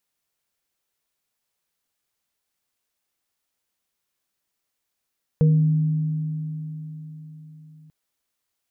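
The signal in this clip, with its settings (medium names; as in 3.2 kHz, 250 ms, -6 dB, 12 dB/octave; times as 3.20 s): sine partials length 2.49 s, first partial 155 Hz, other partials 269/473 Hz, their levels -20/-9.5 dB, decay 4.42 s, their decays 4.51/0.40 s, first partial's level -12.5 dB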